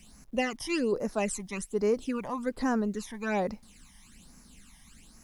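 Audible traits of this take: phasing stages 12, 1.2 Hz, lowest notch 430–3300 Hz; a quantiser's noise floor 12-bit, dither none

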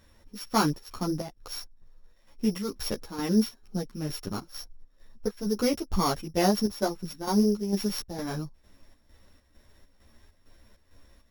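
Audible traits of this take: a buzz of ramps at a fixed pitch in blocks of 8 samples; chopped level 2.2 Hz, depth 60%, duty 65%; a shimmering, thickened sound

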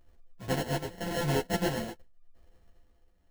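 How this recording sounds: a buzz of ramps at a fixed pitch in blocks of 64 samples; tremolo triangle 0.88 Hz, depth 65%; aliases and images of a low sample rate 1.2 kHz, jitter 0%; a shimmering, thickened sound

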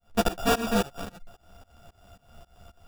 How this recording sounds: a buzz of ramps at a fixed pitch in blocks of 64 samples; tremolo saw up 3.7 Hz, depth 100%; aliases and images of a low sample rate 2.1 kHz, jitter 0%; a shimmering, thickened sound

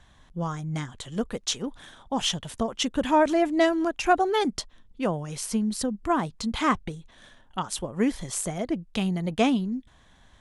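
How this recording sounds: noise floor -57 dBFS; spectral tilt -4.5 dB/octave

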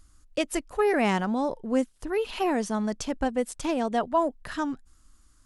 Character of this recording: noise floor -60 dBFS; spectral tilt -4.0 dB/octave

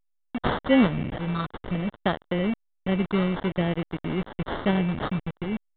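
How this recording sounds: a quantiser's noise floor 6-bit, dither none; phasing stages 4, 0.54 Hz, lowest notch 720–3000 Hz; aliases and images of a low sample rate 2.5 kHz, jitter 0%; A-law

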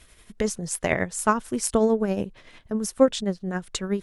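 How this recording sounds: tremolo triangle 11 Hz, depth 55%

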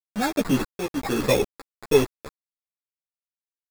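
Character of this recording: aliases and images of a low sample rate 3 kHz, jitter 0%; tremolo saw up 1.4 Hz, depth 95%; a quantiser's noise floor 6-bit, dither none; a shimmering, thickened sound

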